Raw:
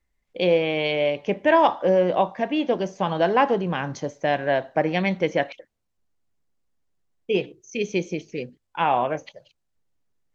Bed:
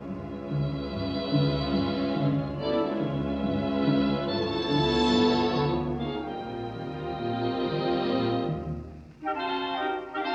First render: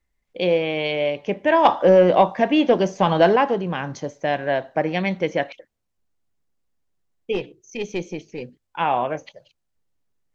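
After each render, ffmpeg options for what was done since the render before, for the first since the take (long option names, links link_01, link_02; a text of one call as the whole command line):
ffmpeg -i in.wav -filter_complex "[0:a]asettb=1/sr,asplit=3[link_01][link_02][link_03];[link_01]atrim=end=1.654[link_04];[link_02]atrim=start=1.65:end=3.36,asetpts=PTS-STARTPTS,afade=type=in:duration=0.004:curve=qsin,afade=type=out:start_time=1.706:duration=0.004:curve=qsin,acontrast=65[link_05];[link_03]atrim=start=3.356[link_06];[link_04][link_05]acrossfade=duration=0.004:curve1=hsin:curve2=qsin[link_07];[link_07][link_06]acrossfade=duration=0.004:curve1=qsin:curve2=hsin,asplit=3[link_08][link_09][link_10];[link_08]afade=type=out:start_time=7.32:duration=0.02[link_11];[link_09]aeval=exprs='(tanh(5.62*val(0)+0.45)-tanh(0.45))/5.62':channel_layout=same,afade=type=in:start_time=7.32:duration=0.02,afade=type=out:start_time=8.41:duration=0.02[link_12];[link_10]afade=type=in:start_time=8.41:duration=0.02[link_13];[link_11][link_12][link_13]amix=inputs=3:normalize=0" out.wav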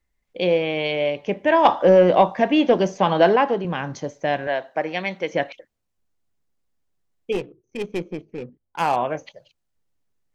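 ffmpeg -i in.wav -filter_complex "[0:a]asettb=1/sr,asplit=3[link_01][link_02][link_03];[link_01]atrim=end=2.984[link_04];[link_02]atrim=start=2.98:end=3.65,asetpts=PTS-STARTPTS,afade=type=in:duration=0.004:curve=qsin,afade=type=out:start_time=0.666:duration=0.004:curve=qsin,highpass=170,lowpass=6000[link_05];[link_03]atrim=start=3.646[link_06];[link_04][link_05]acrossfade=duration=0.004:curve1=hsin:curve2=qsin[link_07];[link_07][link_06]acrossfade=duration=0.004:curve1=qsin:curve2=hsin,asettb=1/sr,asplit=3[link_08][link_09][link_10];[link_08]atrim=end=4.474[link_11];[link_09]atrim=start=4.47:end=5.33,asetpts=PTS-STARTPTS,afade=type=in:duration=0.004:curve=qsin,afade=type=out:start_time=0.856:duration=0.004:curve=qsin,highpass=frequency=520:poles=1[link_12];[link_10]atrim=start=5.326[link_13];[link_11][link_12]acrossfade=duration=0.004:curve1=hsin:curve2=qsin[link_14];[link_14][link_13]acrossfade=duration=0.004:curve1=qsin:curve2=hsin,asettb=1/sr,asplit=3[link_15][link_16][link_17];[link_15]atrim=end=7.324[link_18];[link_16]atrim=start=7.32:end=8.96,asetpts=PTS-STARTPTS,afade=type=in:duration=0.004:curve=qsin,afade=type=out:start_time=1.636:duration=0.004:curve=qsin,adynamicsmooth=sensitivity=4:basefreq=920[link_19];[link_17]atrim=start=8.956[link_20];[link_18][link_19]acrossfade=duration=0.004:curve1=hsin:curve2=qsin[link_21];[link_21][link_20]acrossfade=duration=0.004:curve1=qsin:curve2=hsin" out.wav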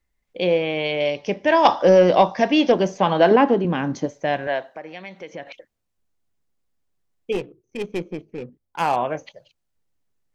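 ffmpeg -i in.wav -filter_complex "[0:a]asettb=1/sr,asplit=3[link_01][link_02][link_03];[link_01]atrim=end=1.004[link_04];[link_02]atrim=start=1:end=2.72,asetpts=PTS-STARTPTS,afade=type=in:duration=0.004:curve=qsin,afade=type=out:start_time=1.716:duration=0.004:curve=qsin,lowpass=frequency=5400:width_type=q:width=5.8[link_05];[link_03]atrim=start=2.716[link_06];[link_04][link_05]acrossfade=duration=0.004:curve1=hsin:curve2=qsin[link_07];[link_07][link_06]acrossfade=duration=0.004:curve1=qsin:curve2=hsin,asettb=1/sr,asplit=3[link_08][link_09][link_10];[link_08]atrim=end=3.314[link_11];[link_09]atrim=start=3.31:end=4.06,asetpts=PTS-STARTPTS,afade=type=in:duration=0.004:curve=qsin,afade=type=out:start_time=0.746:duration=0.004:curve=qsin,equalizer=frequency=270:width_type=o:width=1:gain=10.5[link_12];[link_10]atrim=start=4.056[link_13];[link_11][link_12]acrossfade=duration=0.004:curve1=hsin:curve2=qsin[link_14];[link_14][link_13]acrossfade=duration=0.004:curve1=qsin:curve2=hsin,asettb=1/sr,asplit=3[link_15][link_16][link_17];[link_15]atrim=end=4.734[link_18];[link_16]atrim=start=4.73:end=5.47,asetpts=PTS-STARTPTS,afade=type=in:duration=0.004:curve=qsin,afade=type=out:start_time=0.736:duration=0.004:curve=qsin,acompressor=threshold=-40dB:ratio=2:attack=3.2:release=140:knee=1:detection=peak[link_19];[link_17]atrim=start=5.466[link_20];[link_18][link_19]acrossfade=duration=0.004:curve1=hsin:curve2=qsin[link_21];[link_21][link_20]acrossfade=duration=0.004:curve1=qsin:curve2=hsin" out.wav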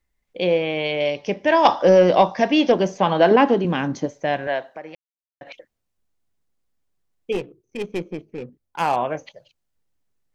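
ffmpeg -i in.wav -filter_complex "[0:a]asettb=1/sr,asplit=3[link_01][link_02][link_03];[link_01]atrim=end=3.374[link_04];[link_02]atrim=start=3.37:end=3.87,asetpts=PTS-STARTPTS,afade=type=in:duration=0.004:curve=qsin,afade=type=out:start_time=0.496:duration=0.004:curve=qsin,highshelf=frequency=3100:gain=8.5[link_05];[link_03]atrim=start=3.866[link_06];[link_04][link_05]acrossfade=duration=0.004:curve1=hsin:curve2=qsin[link_07];[link_07][link_06]acrossfade=duration=0.004:curve1=qsin:curve2=hsin,asplit=3[link_08][link_09][link_10];[link_08]atrim=end=4.95,asetpts=PTS-STARTPTS,afade=type=out:start_time=4.946:duration=0.004:curve=hsin[link_11];[link_09]atrim=start=4.95:end=5.41,asetpts=PTS-STARTPTS,volume=0[link_12];[link_10]atrim=start=5.41,asetpts=PTS-STARTPTS,afade=type=in:duration=0.004:curve=hsin[link_13];[link_11][link_12][link_13]concat=n=3:v=0:a=1" out.wav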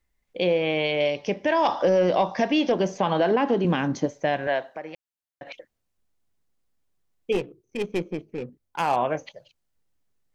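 ffmpeg -i in.wav -af "alimiter=limit=-12.5dB:level=0:latency=1:release=137" out.wav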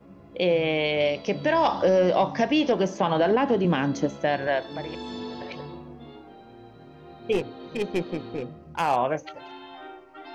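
ffmpeg -i in.wav -i bed.wav -filter_complex "[1:a]volume=-13dB[link_01];[0:a][link_01]amix=inputs=2:normalize=0" out.wav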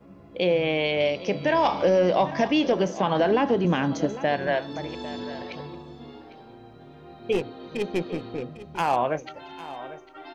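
ffmpeg -i in.wav -af "aecho=1:1:801:0.168" out.wav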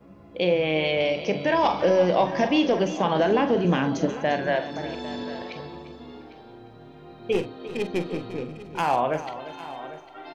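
ffmpeg -i in.wav -filter_complex "[0:a]asplit=2[link_01][link_02];[link_02]adelay=45,volume=-10dB[link_03];[link_01][link_03]amix=inputs=2:normalize=0,aecho=1:1:349|698|1047:0.2|0.0499|0.0125" out.wav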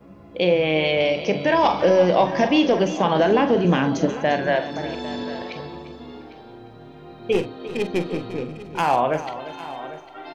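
ffmpeg -i in.wav -af "volume=3.5dB" out.wav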